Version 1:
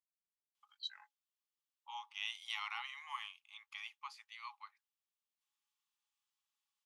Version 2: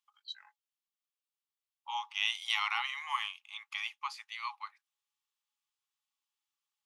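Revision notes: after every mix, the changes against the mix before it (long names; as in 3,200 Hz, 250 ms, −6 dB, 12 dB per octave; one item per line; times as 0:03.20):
first voice: entry −0.55 s
second voice +10.0 dB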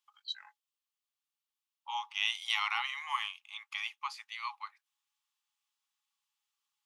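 first voice +4.5 dB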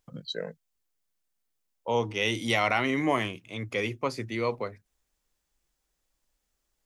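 master: remove Chebyshev high-pass with heavy ripple 810 Hz, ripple 9 dB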